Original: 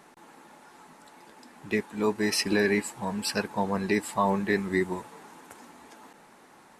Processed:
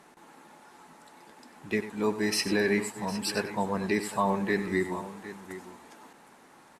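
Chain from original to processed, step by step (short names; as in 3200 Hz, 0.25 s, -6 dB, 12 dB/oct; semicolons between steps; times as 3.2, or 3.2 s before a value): added harmonics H 5 -37 dB, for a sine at -12 dBFS; tapped delay 95/758 ms -12.5/-14.5 dB; gain -2 dB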